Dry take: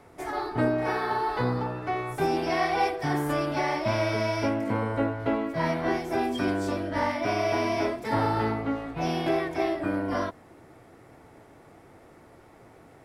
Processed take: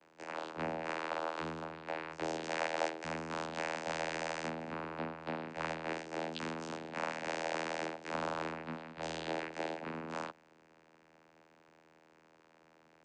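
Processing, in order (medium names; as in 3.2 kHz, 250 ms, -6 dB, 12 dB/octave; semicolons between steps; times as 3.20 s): low-pass 5.2 kHz; differentiator; vocoder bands 8, saw 80.6 Hz; trim +7.5 dB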